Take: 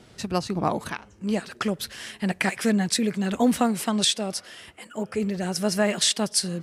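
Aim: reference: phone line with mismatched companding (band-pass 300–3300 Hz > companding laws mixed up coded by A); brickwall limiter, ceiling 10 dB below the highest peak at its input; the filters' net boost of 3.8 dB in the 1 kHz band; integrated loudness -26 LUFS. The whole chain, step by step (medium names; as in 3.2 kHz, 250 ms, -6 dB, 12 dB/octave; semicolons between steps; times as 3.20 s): peaking EQ 1 kHz +5.5 dB; peak limiter -16.5 dBFS; band-pass 300–3300 Hz; companding laws mixed up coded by A; trim +7 dB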